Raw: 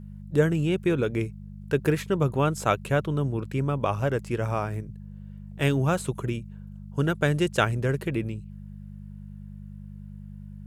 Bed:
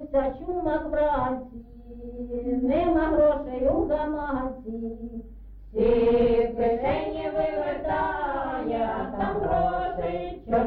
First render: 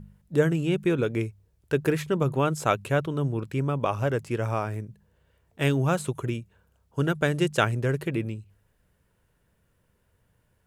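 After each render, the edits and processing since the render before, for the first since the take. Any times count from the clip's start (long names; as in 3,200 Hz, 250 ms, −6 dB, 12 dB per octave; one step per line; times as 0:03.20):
hum removal 50 Hz, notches 4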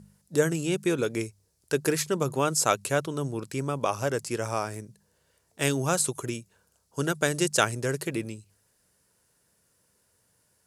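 high-pass filter 240 Hz 6 dB per octave
flat-topped bell 7,100 Hz +13 dB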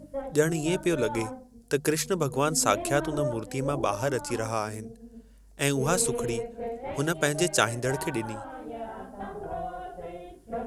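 mix in bed −11 dB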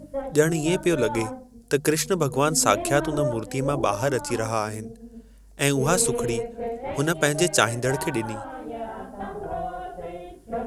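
level +4 dB
brickwall limiter −2 dBFS, peak gain reduction 1 dB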